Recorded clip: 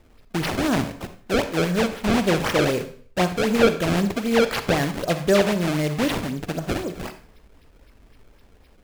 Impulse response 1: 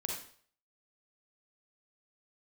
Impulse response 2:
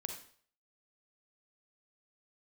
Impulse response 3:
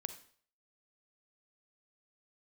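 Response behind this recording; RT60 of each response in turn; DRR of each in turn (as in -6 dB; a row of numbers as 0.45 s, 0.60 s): 3; 0.50 s, 0.50 s, 0.50 s; -0.5 dB, 4.0 dB, 10.0 dB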